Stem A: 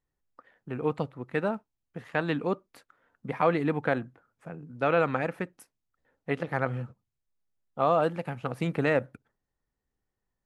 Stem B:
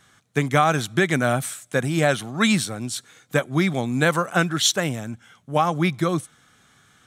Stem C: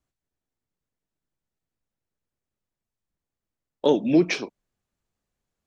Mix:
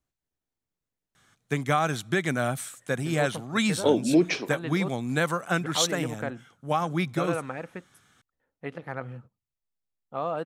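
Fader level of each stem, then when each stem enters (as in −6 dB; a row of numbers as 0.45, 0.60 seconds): −6.5, −6.0, −2.0 decibels; 2.35, 1.15, 0.00 seconds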